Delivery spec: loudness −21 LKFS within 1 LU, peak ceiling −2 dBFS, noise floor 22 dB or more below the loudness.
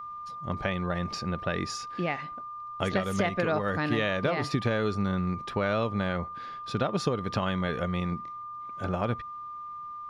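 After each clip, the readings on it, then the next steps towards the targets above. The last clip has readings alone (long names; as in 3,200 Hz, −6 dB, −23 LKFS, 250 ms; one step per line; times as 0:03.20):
interfering tone 1,200 Hz; level of the tone −37 dBFS; integrated loudness −30.5 LKFS; sample peak −13.5 dBFS; target loudness −21.0 LKFS
→ notch filter 1,200 Hz, Q 30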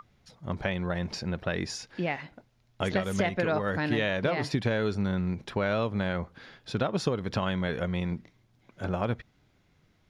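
interfering tone none found; integrated loudness −30.5 LKFS; sample peak −13.0 dBFS; target loudness −21.0 LKFS
→ level +9.5 dB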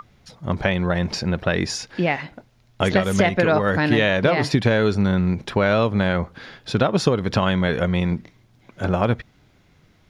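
integrated loudness −21.0 LKFS; sample peak −3.5 dBFS; background noise floor −57 dBFS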